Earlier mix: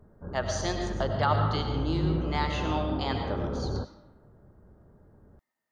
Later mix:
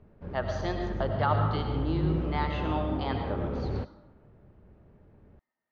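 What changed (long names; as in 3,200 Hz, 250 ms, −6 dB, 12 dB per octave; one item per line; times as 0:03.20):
background: remove linear-phase brick-wall low-pass 1,700 Hz
master: add high-frequency loss of the air 260 metres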